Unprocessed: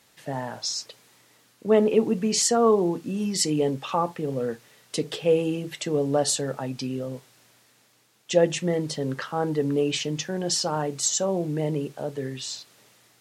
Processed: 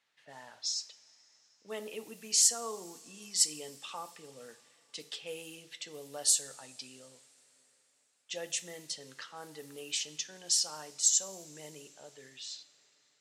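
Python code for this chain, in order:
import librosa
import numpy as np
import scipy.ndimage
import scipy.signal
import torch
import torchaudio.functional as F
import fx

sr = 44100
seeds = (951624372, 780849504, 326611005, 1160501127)

y = fx.env_lowpass(x, sr, base_hz=2100.0, full_db=-20.5)
y = F.preemphasis(torch.from_numpy(y), 0.97).numpy()
y = fx.rev_double_slope(y, sr, seeds[0], early_s=0.56, late_s=4.3, knee_db=-16, drr_db=13.0)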